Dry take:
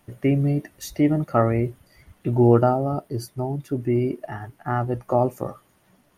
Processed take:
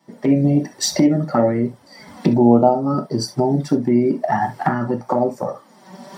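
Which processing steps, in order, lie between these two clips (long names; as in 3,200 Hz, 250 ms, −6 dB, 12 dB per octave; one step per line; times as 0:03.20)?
camcorder AGC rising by 30 dB per second
flanger swept by the level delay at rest 6.2 ms, full sweep at −12.5 dBFS
high-pass filter 680 Hz 6 dB per octave
parametric band 12,000 Hz −13.5 dB 0.39 octaves
convolution reverb, pre-delay 3 ms, DRR 3 dB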